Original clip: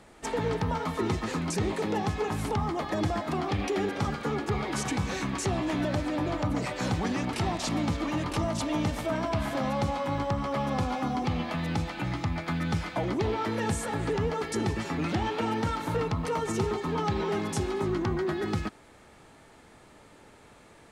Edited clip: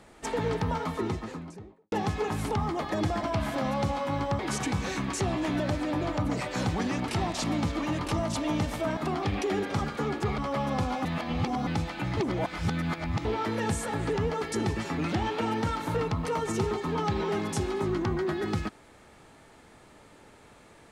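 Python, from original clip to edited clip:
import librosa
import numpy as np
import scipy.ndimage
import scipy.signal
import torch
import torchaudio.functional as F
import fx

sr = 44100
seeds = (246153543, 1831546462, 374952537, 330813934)

y = fx.studio_fade_out(x, sr, start_s=0.71, length_s=1.21)
y = fx.edit(y, sr, fx.swap(start_s=3.23, length_s=1.41, other_s=9.22, other_length_s=1.16),
    fx.reverse_span(start_s=11.05, length_s=0.62),
    fx.reverse_span(start_s=12.17, length_s=1.08), tone=tone)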